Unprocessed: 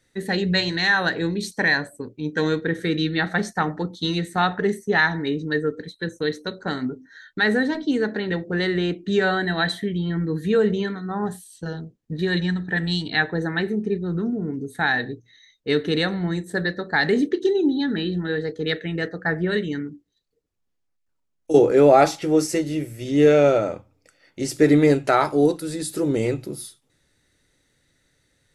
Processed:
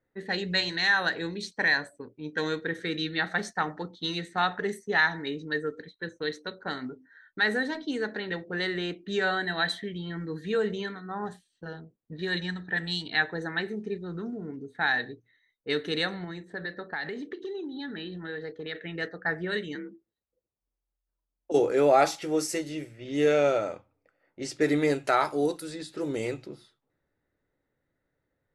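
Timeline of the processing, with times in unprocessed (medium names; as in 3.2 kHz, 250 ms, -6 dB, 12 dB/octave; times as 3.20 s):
16.24–18.75 s: compression, threshold -24 dBFS
19.75–21.52 s: frequency shift +43 Hz
whole clip: level-controlled noise filter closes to 960 Hz, open at -18.5 dBFS; bass shelf 400 Hz -10 dB; trim -3.5 dB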